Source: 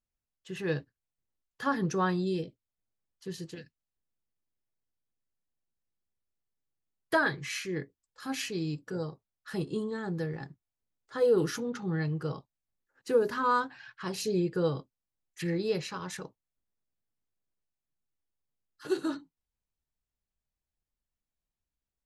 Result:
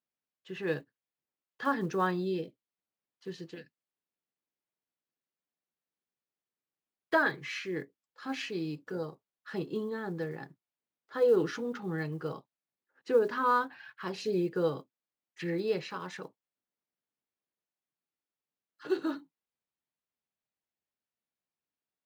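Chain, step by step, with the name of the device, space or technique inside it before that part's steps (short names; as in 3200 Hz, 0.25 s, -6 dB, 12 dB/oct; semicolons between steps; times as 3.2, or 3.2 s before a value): early digital voice recorder (BPF 210–3700 Hz; block floating point 7-bit)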